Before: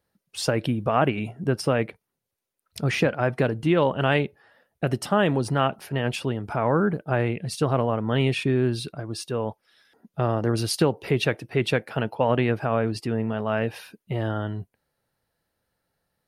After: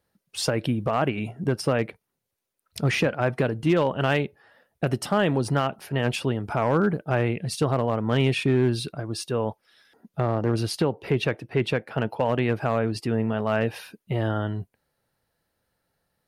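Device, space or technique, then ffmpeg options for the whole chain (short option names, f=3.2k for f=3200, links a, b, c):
limiter into clipper: -filter_complex "[0:a]alimiter=limit=-12.5dB:level=0:latency=1:release=420,asoftclip=type=hard:threshold=-15dB,asettb=1/sr,asplit=3[a][b][c];[a]atrim=end=10.204[d];[b]atrim=start=10.2:end=12.1,asetpts=PTS-STARTPTS,afade=t=in:d=0.004:c=qsin,afade=t=out:st=1.896:d=0.004:c=qsin,highshelf=f=4.2k:g=-8.5[e];[c]atrim=start=12.096[f];[d][e]acrossfade=d=0.004:c1=hsin:c2=qsin[g];[g][f]acrossfade=d=0.004:c1=qsin:c2=hsin,volume=1.5dB"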